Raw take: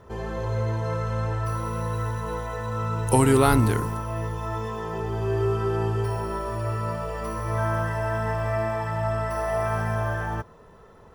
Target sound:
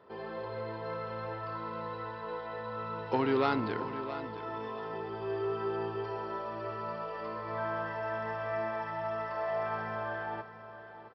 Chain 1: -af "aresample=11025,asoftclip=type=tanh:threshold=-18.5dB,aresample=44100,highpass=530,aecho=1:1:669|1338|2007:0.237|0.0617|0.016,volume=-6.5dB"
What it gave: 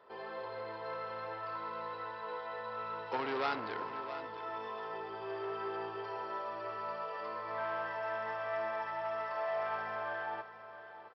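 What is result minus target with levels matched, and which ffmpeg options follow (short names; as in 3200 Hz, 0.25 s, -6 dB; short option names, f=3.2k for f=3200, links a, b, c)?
250 Hz band -8.0 dB; soft clip: distortion +9 dB
-af "aresample=11025,asoftclip=type=tanh:threshold=-10.5dB,aresample=44100,highpass=250,aecho=1:1:669|1338|2007:0.237|0.0617|0.016,volume=-6.5dB"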